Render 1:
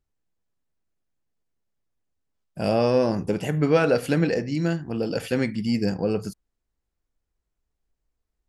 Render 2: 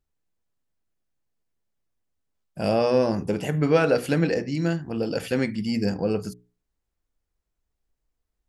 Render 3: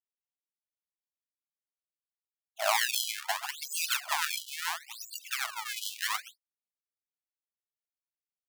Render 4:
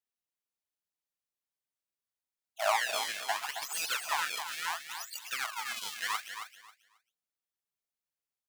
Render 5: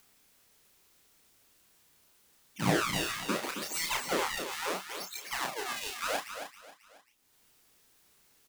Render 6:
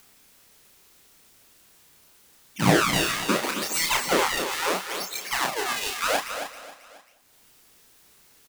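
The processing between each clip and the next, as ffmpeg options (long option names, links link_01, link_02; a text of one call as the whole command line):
ffmpeg -i in.wav -af "bandreject=frequency=60:width_type=h:width=6,bandreject=frequency=120:width_type=h:width=6,bandreject=frequency=180:width_type=h:width=6,bandreject=frequency=240:width_type=h:width=6,bandreject=frequency=300:width_type=h:width=6,bandreject=frequency=360:width_type=h:width=6,bandreject=frequency=420:width_type=h:width=6" out.wav
ffmpeg -i in.wav -af "afftfilt=real='re*gte(hypot(re,im),0.0282)':imag='im*gte(hypot(re,im),0.0282)':win_size=1024:overlap=0.75,acrusher=samples=27:mix=1:aa=0.000001:lfo=1:lforange=43.2:lforate=0.73,afftfilt=real='re*gte(b*sr/1024,580*pow(2800/580,0.5+0.5*sin(2*PI*1.4*pts/sr)))':imag='im*gte(b*sr/1024,580*pow(2800/580,0.5+0.5*sin(2*PI*1.4*pts/sr)))':win_size=1024:overlap=0.75" out.wav
ffmpeg -i in.wav -filter_complex "[0:a]acrossover=split=1400[link_01][link_02];[link_01]asplit=2[link_03][link_04];[link_04]adelay=27,volume=-12.5dB[link_05];[link_03][link_05]amix=inputs=2:normalize=0[link_06];[link_02]asoftclip=type=tanh:threshold=-25.5dB[link_07];[link_06][link_07]amix=inputs=2:normalize=0,aecho=1:1:270|540|810:0.376|0.0789|0.0166" out.wav
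ffmpeg -i in.wav -filter_complex "[0:a]acompressor=mode=upward:threshold=-45dB:ratio=2.5,afreqshift=-480,asplit=2[link_01][link_02];[link_02]adelay=32,volume=-5dB[link_03];[link_01][link_03]amix=inputs=2:normalize=0" out.wav
ffmpeg -i in.wav -af "aecho=1:1:205|410|615:0.158|0.0571|0.0205,volume=8.5dB" out.wav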